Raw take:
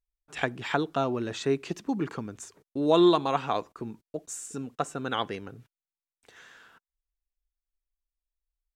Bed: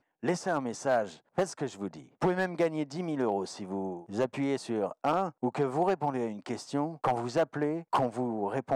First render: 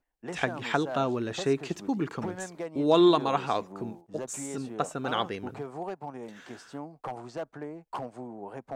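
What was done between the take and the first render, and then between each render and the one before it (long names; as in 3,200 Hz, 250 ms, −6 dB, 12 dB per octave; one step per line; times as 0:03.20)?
mix in bed −9 dB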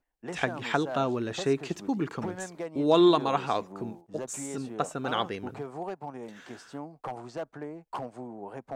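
no processing that can be heard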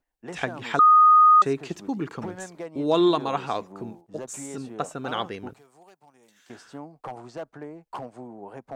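0:00.79–0:01.42: beep over 1,240 Hz −11 dBFS
0:05.53–0:06.50: first-order pre-emphasis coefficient 0.9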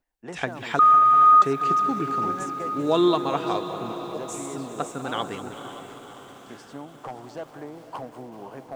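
feedback delay with all-pass diffusion 516 ms, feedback 59%, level −11 dB
feedback echo at a low word length 194 ms, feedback 80%, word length 8 bits, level −14 dB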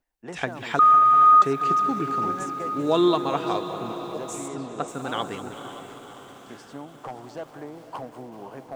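0:04.48–0:04.88: high-frequency loss of the air 62 metres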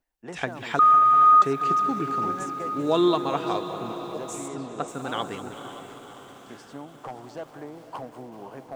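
level −1 dB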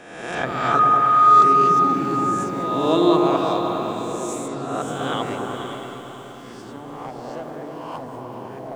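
peak hold with a rise ahead of every peak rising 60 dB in 1.07 s
echo whose low-pass opens from repeat to repeat 105 ms, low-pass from 400 Hz, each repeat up 1 octave, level 0 dB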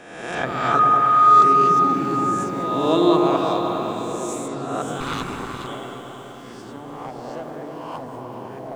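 0:05.00–0:05.67: lower of the sound and its delayed copy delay 0.8 ms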